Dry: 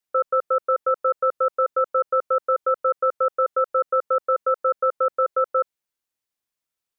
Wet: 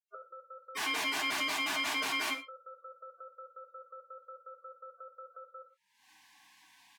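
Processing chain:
0:00.75–0:02.35: sign of each sample alone
camcorder AGC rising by 64 dB per second
gate on every frequency bin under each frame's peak −15 dB strong
noise reduction from a noise print of the clip's start 28 dB
brickwall limiter −25.5 dBFS, peak gain reduction 9.5 dB
resonant band-pass 1,200 Hz, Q 0.69
double-tracking delay 26 ms −13 dB
reverb whose tail is shaped and stops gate 140 ms falling, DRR 6.5 dB
level +3.5 dB

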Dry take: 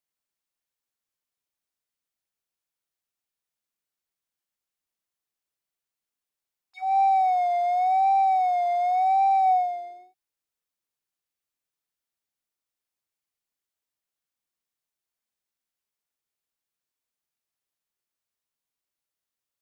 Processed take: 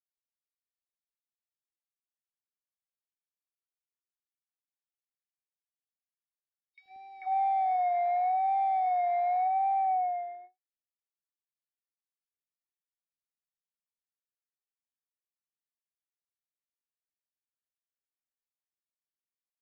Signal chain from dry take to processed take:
notch filter 580 Hz, Q 12
noise gate with hold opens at −37 dBFS
parametric band 1,800 Hz +7 dB 0.31 octaves, from 0:06.88 +14 dB
downward compressor, threshold −24 dBFS, peak gain reduction 6.5 dB
high-frequency loss of the air 320 metres
three-band delay without the direct sound highs, lows, mids 80/440 ms, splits 420/2,800 Hz

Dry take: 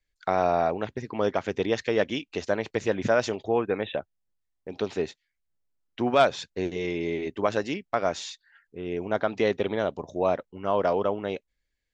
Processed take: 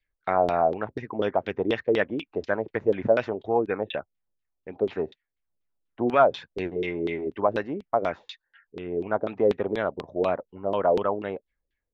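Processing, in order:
auto-filter low-pass saw down 4.1 Hz 330–3,700 Hz
level −2 dB

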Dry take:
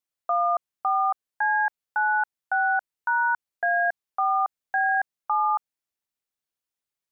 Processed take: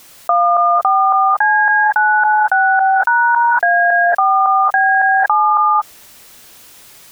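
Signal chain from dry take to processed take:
reverb whose tail is shaped and stops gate 250 ms rising, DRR 8 dB
envelope flattener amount 100%
level +7 dB

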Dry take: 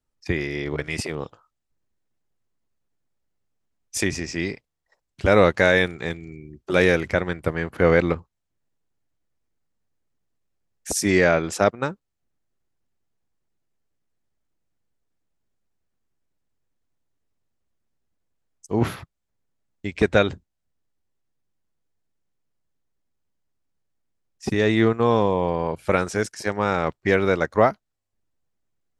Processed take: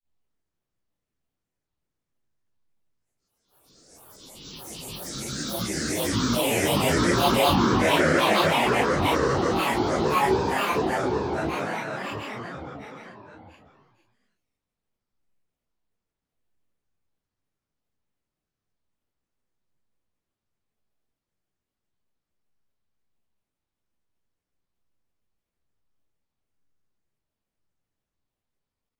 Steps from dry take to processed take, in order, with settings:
extreme stretch with random phases 5.5×, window 1.00 s, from 0:09.81
echo through a band-pass that steps 202 ms, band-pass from 1,400 Hz, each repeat 0.7 octaves, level −4 dB
granular cloud 188 ms, grains 13 per second, pitch spread up and down by 12 semitones

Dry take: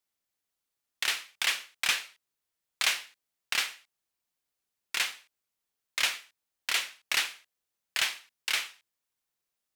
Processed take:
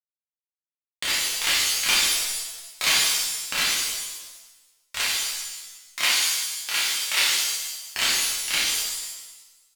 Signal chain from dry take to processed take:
power curve on the samples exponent 2
0:04.99–0:07.20: high-pass filter 290 Hz 6 dB per octave
echo with shifted repeats 240 ms, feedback 32%, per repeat +100 Hz, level −21 dB
reverb with rising layers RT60 1 s, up +7 semitones, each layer −2 dB, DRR −8 dB
level +4.5 dB

